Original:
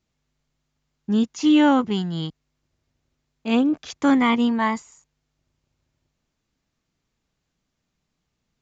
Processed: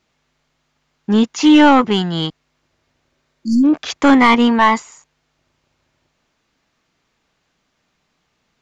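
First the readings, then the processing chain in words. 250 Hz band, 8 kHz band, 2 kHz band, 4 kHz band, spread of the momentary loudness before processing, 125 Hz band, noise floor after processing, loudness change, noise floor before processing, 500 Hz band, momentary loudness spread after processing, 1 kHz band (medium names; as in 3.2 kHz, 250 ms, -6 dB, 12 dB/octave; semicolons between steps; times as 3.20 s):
+6.5 dB, no reading, +10.0 dB, +9.5 dB, 15 LU, +5.5 dB, -69 dBFS, +7.0 dB, -78 dBFS, +8.0 dB, 13 LU, +10.5 dB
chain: overdrive pedal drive 14 dB, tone 2.8 kHz, clips at -8 dBFS; spectral replace 3.14–3.62 s, 360–4300 Hz before; trim +7 dB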